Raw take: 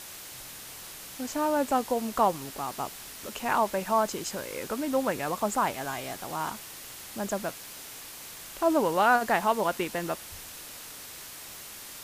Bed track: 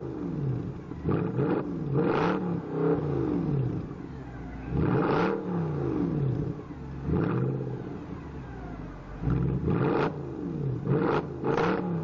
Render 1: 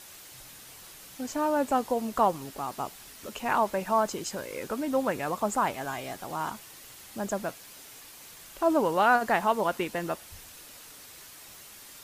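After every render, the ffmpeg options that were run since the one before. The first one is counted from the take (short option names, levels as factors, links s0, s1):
-af "afftdn=nr=6:nf=-44"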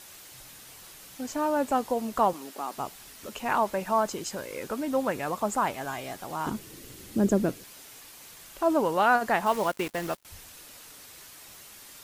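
-filter_complex "[0:a]asettb=1/sr,asplit=3[s0][s1][s2];[s0]atrim=end=2.334[s3];[s1]atrim=start=2.33:end=2.75,asetpts=PTS-STARTPTS,afade=t=in:d=0.004:c=qsin,afade=t=out:st=0.416:d=0.004:c=qsin,highpass=f=220:w=0.5412,highpass=f=220:w=1.3066[s4];[s2]atrim=start=2.746[s5];[s3][s4]acrossfade=d=0.004:c1=hsin:c2=qsin[s6];[s6][s5]acrossfade=d=0.004:c1=qsin:c2=hsin,asettb=1/sr,asplit=3[s7][s8][s9];[s7]atrim=end=6.464[s10];[s8]atrim=start=6.46:end=7.64,asetpts=PTS-STARTPTS,afade=t=in:d=0.004:c=qsin,afade=t=out:st=1.176:d=0.004:c=qsin,lowshelf=f=530:t=q:w=1.5:g=11[s11];[s9]atrim=start=7.636[s12];[s10][s11]acrossfade=d=0.004:c1=hsin:c2=qsin[s13];[s13][s12]acrossfade=d=0.004:c1=qsin:c2=hsin,asettb=1/sr,asplit=3[s14][s15][s16];[s14]atrim=end=9.464[s17];[s15]atrim=start=9.46:end=10.25,asetpts=PTS-STARTPTS,afade=t=in:d=0.004:c=qsin,afade=t=out:st=0.786:d=0.004:c=qsin,acrusher=bits=5:mix=0:aa=0.5[s18];[s16]atrim=start=10.246[s19];[s17][s18]acrossfade=d=0.004:c1=hsin:c2=qsin[s20];[s20][s19]acrossfade=d=0.004:c1=qsin:c2=hsin"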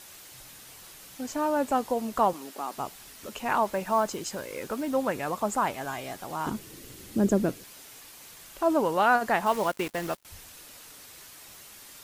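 -filter_complex "[0:a]asettb=1/sr,asplit=3[s0][s1][s2];[s0]atrim=end=3.654[s3];[s1]atrim=start=3.65:end=4.91,asetpts=PTS-STARTPTS,afade=t=in:d=0.004:c=qsin,afade=t=out:st=1.256:d=0.004:c=qsin,acrusher=bits=7:mode=log:mix=0:aa=0.000001[s4];[s2]atrim=start=4.906[s5];[s3][s4]acrossfade=d=0.004:c1=hsin:c2=qsin[s6];[s6][s5]acrossfade=d=0.004:c1=qsin:c2=hsin"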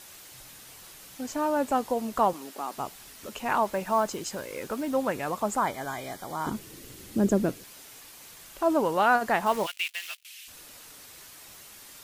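-filter_complex "[0:a]asettb=1/sr,asplit=3[s0][s1][s2];[s0]atrim=end=5.604[s3];[s1]atrim=start=5.6:end=6.52,asetpts=PTS-STARTPTS,afade=t=in:d=0.004:c=qsin,afade=t=out:st=0.916:d=0.004:c=qsin,asuperstop=centerf=2700:order=20:qfactor=5.6[s4];[s2]atrim=start=6.516[s5];[s3][s4]acrossfade=d=0.004:c1=hsin:c2=qsin[s6];[s6][s5]acrossfade=d=0.004:c1=qsin:c2=hsin,asplit=3[s7][s8][s9];[s7]afade=t=out:st=9.65:d=0.02[s10];[s8]highpass=f=2700:t=q:w=3.1,afade=t=in:st=9.65:d=0.02,afade=t=out:st=10.47:d=0.02[s11];[s9]afade=t=in:st=10.47:d=0.02[s12];[s10][s11][s12]amix=inputs=3:normalize=0"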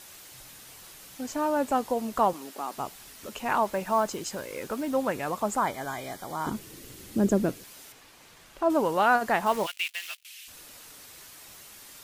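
-filter_complex "[0:a]asettb=1/sr,asplit=3[s0][s1][s2];[s0]atrim=end=7.924[s3];[s1]atrim=start=7.92:end=8.7,asetpts=PTS-STARTPTS,afade=t=in:d=0.004:c=qsin,afade=t=out:st=0.776:d=0.004:c=qsin,lowpass=f=3000:p=1[s4];[s2]atrim=start=8.696[s5];[s3][s4]acrossfade=d=0.004:c1=hsin:c2=qsin[s6];[s6][s5]acrossfade=d=0.004:c1=qsin:c2=hsin"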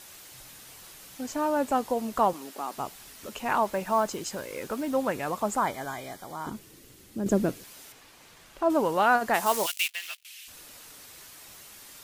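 -filter_complex "[0:a]asplit=3[s0][s1][s2];[s0]afade=t=out:st=9.33:d=0.02[s3];[s1]bass=f=250:g=-6,treble=f=4000:g=12,afade=t=in:st=9.33:d=0.02,afade=t=out:st=9.86:d=0.02[s4];[s2]afade=t=in:st=9.86:d=0.02[s5];[s3][s4][s5]amix=inputs=3:normalize=0,asplit=2[s6][s7];[s6]atrim=end=7.26,asetpts=PTS-STARTPTS,afade=t=out:st=5.73:d=1.53:c=qua:silence=0.421697[s8];[s7]atrim=start=7.26,asetpts=PTS-STARTPTS,afade=t=in:d=0.004:c=hsin:silence=0.421697[s9];[s8][s9]concat=n=2:v=0:a=1"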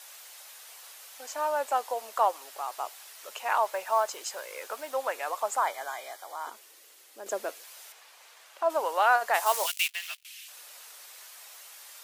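-af "highpass=f=560:w=0.5412,highpass=f=560:w=1.3066"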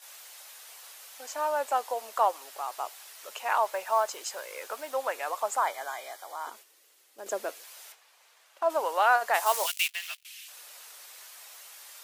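-af "agate=range=0.447:threshold=0.00316:ratio=16:detection=peak"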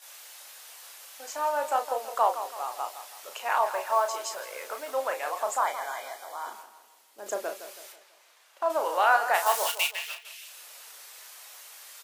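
-filter_complex "[0:a]asplit=2[s0][s1];[s1]adelay=34,volume=0.447[s2];[s0][s2]amix=inputs=2:normalize=0,asplit=2[s3][s4];[s4]adelay=164,lowpass=f=3300:p=1,volume=0.282,asplit=2[s5][s6];[s6]adelay=164,lowpass=f=3300:p=1,volume=0.44,asplit=2[s7][s8];[s8]adelay=164,lowpass=f=3300:p=1,volume=0.44,asplit=2[s9][s10];[s10]adelay=164,lowpass=f=3300:p=1,volume=0.44,asplit=2[s11][s12];[s12]adelay=164,lowpass=f=3300:p=1,volume=0.44[s13];[s3][s5][s7][s9][s11][s13]amix=inputs=6:normalize=0"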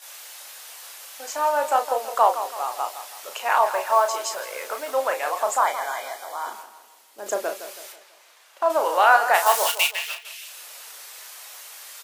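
-af "volume=2"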